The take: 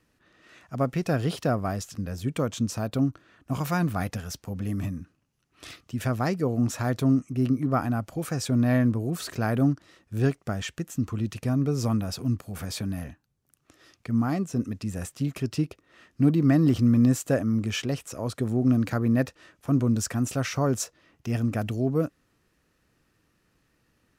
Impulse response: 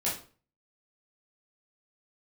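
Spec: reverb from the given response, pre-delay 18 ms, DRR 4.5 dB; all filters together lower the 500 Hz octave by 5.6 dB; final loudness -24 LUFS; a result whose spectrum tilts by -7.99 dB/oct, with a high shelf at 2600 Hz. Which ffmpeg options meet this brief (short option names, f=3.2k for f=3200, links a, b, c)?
-filter_complex "[0:a]equalizer=f=500:t=o:g=-7,highshelf=f=2.6k:g=-8,asplit=2[a][b];[1:a]atrim=start_sample=2205,adelay=18[c];[b][c]afir=irnorm=-1:irlink=0,volume=-11dB[d];[a][d]amix=inputs=2:normalize=0,volume=3dB"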